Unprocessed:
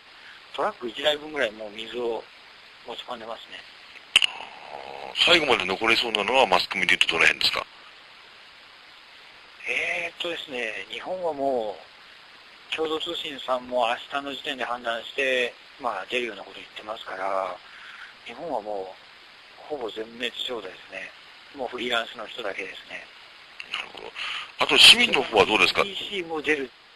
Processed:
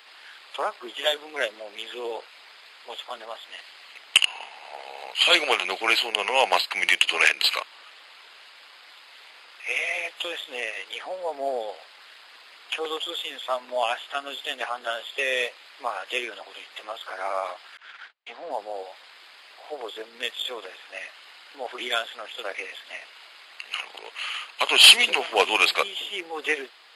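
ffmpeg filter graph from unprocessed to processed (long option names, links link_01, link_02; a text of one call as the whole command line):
ffmpeg -i in.wav -filter_complex "[0:a]asettb=1/sr,asplit=3[link_01][link_02][link_03];[link_01]atrim=end=17.774[link_04];[link_02]atrim=start=17.77:end=18.51,asetpts=PTS-STARTPTS,afade=type=in:duration=0.004:curve=qsin,afade=type=out:start_time=0.736:duration=0.004:curve=qsin,highpass=100,lowpass=6600,highshelf=frequency=5200:gain=-5,agate=range=-38dB:threshold=-45dB:ratio=16:release=100:detection=peak[link_05];[link_03]atrim=start=18.506[link_06];[link_04][link_05]acrossfade=duration=0.004:curve1=hsin:curve2=qsin[link_07];[link_07][link_06]acrossfade=duration=0.004:curve1=qsin:curve2=hsin,highpass=480,highshelf=frequency=10000:gain=11.5,volume=-1dB" out.wav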